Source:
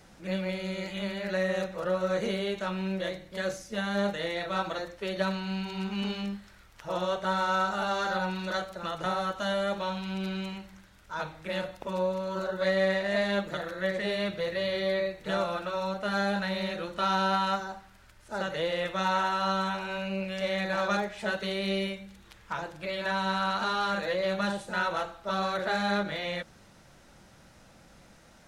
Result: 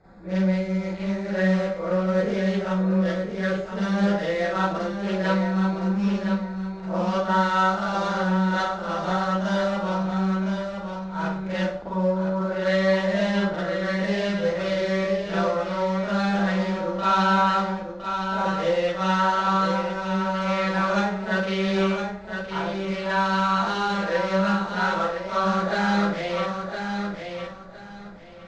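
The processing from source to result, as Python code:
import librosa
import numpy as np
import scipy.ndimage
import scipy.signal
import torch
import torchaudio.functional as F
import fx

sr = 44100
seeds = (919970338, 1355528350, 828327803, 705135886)

p1 = fx.wiener(x, sr, points=15)
p2 = scipy.signal.sosfilt(scipy.signal.butter(4, 7300.0, 'lowpass', fs=sr, output='sos'), p1)
p3 = fx.echo_feedback(p2, sr, ms=1012, feedback_pct=22, wet_db=-7)
p4 = fx.rev_schroeder(p3, sr, rt60_s=0.4, comb_ms=33, drr_db=-9.0)
p5 = fx.rider(p4, sr, range_db=3, speed_s=2.0)
p6 = p4 + (p5 * librosa.db_to_amplitude(-2.0))
y = p6 * librosa.db_to_amplitude(-8.5)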